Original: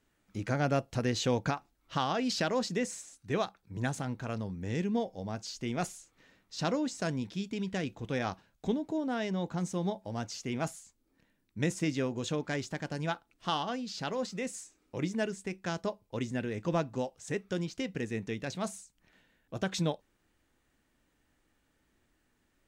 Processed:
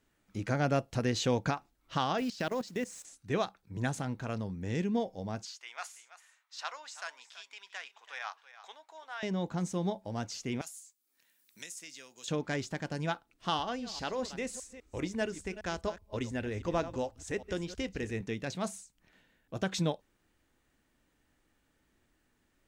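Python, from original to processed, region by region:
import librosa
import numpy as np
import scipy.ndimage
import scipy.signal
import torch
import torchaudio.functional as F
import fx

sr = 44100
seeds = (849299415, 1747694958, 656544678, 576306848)

y = fx.chain(x, sr, fx.delta_hold(step_db=-48.5),
    fx.level_steps(step_db=16), at=(2.18, 3.05))
y = fx.chain(y, sr, fx.highpass(hz=940.0, slope=24),
    fx.high_shelf(hz=3500.0, db=-6.0),
    fx.echo_single(ms=331, db=-14.5), at=(5.45, 9.23))
y = fx.chain(y, sr, fx.differentiator(),
    fx.band_squash(depth_pct=70), at=(10.61, 12.28))
y = fx.chain(y, sr, fx.reverse_delay(ms=202, wet_db=-13.5),
    fx.low_shelf_res(hz=100.0, db=11.5, q=3.0), at=(13.59, 18.21))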